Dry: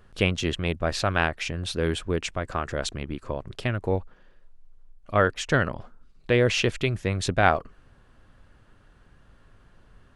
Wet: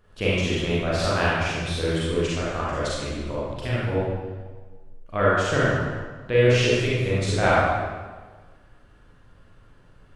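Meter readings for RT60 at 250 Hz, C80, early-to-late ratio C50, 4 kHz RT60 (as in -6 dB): 1.5 s, 0.0 dB, -3.5 dB, 1.1 s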